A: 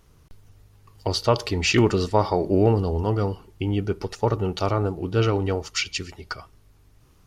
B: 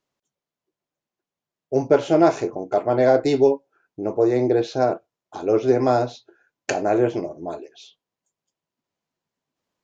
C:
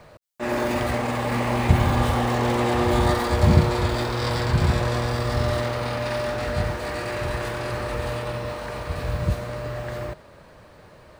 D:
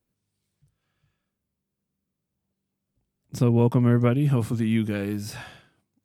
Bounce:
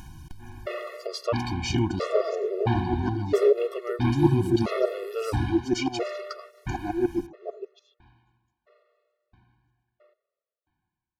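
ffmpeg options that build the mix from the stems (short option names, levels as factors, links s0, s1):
-filter_complex "[0:a]acompressor=mode=upward:threshold=0.0794:ratio=2.5,volume=0.531,asplit=2[s0][s1];[1:a]equalizer=f=370:t=o:w=0.9:g=12,aeval=exprs='val(0)*pow(10,-23*if(lt(mod(-6.8*n/s,1),2*abs(-6.8)/1000),1-mod(-6.8*n/s,1)/(2*abs(-6.8)/1000),(mod(-6.8*n/s,1)-2*abs(-6.8)/1000)/(1-2*abs(-6.8)/1000))/20)':c=same,volume=0.631[s2];[2:a]lowpass=f=3900:w=0.5412,lowpass=f=3900:w=1.3066,aeval=exprs='val(0)*pow(10,-26*if(lt(mod(1.5*n/s,1),2*abs(1.5)/1000),1-mod(1.5*n/s,1)/(2*abs(1.5)/1000),(mod(1.5*n/s,1)-2*abs(1.5)/1000)/(1-2*abs(1.5)/1000))/20)':c=same,volume=0.891[s3];[3:a]volume=0.794[s4];[s1]apad=whole_len=493684[s5];[s3][s5]sidechaingate=range=0.0708:threshold=0.00447:ratio=16:detection=peak[s6];[s0][s2][s6][s4]amix=inputs=4:normalize=0,afftfilt=real='re*gt(sin(2*PI*0.75*pts/sr)*(1-2*mod(floor(b*sr/1024/360),2)),0)':imag='im*gt(sin(2*PI*0.75*pts/sr)*(1-2*mod(floor(b*sr/1024/360),2)),0)':win_size=1024:overlap=0.75"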